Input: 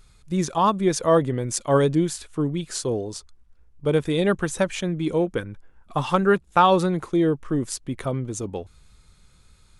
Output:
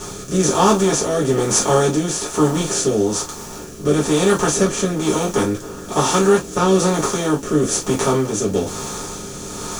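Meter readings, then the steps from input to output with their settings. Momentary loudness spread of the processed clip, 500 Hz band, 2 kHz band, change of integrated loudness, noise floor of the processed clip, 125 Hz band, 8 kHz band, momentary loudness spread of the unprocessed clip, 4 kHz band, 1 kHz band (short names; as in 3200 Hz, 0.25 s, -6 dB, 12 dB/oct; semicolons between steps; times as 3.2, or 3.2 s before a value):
12 LU, +5.5 dB, +4.5 dB, +5.0 dB, -33 dBFS, +4.0 dB, +13.5 dB, 11 LU, +9.0 dB, +2.5 dB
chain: per-bin compression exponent 0.4; in parallel at -7.5 dB: requantised 6-bit, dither triangular; on the sum: fifteen-band EQ 100 Hz +7 dB, 250 Hz +6 dB, 6300 Hz +10 dB; rotary speaker horn 1.1 Hz; high shelf 4100 Hz +5 dB; non-linear reverb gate 80 ms falling, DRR -6.5 dB; reverse; upward compressor, threshold -17 dBFS; reverse; gain -11 dB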